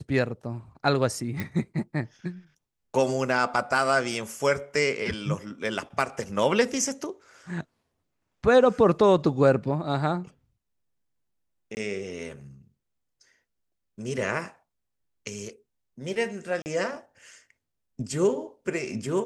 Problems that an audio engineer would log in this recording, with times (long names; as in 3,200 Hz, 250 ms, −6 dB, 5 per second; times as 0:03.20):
0:01.40: click
0:11.75–0:11.77: drop-out 19 ms
0:16.62–0:16.66: drop-out 39 ms